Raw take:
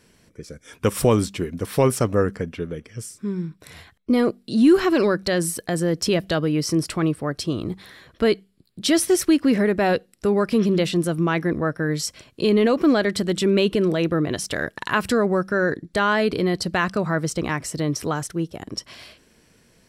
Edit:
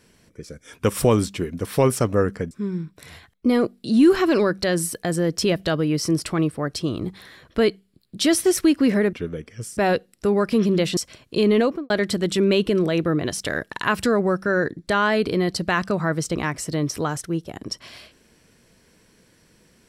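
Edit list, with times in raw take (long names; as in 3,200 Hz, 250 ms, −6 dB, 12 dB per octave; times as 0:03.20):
0:02.51–0:03.15: move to 0:09.77
0:10.97–0:12.03: remove
0:12.66–0:12.96: fade out and dull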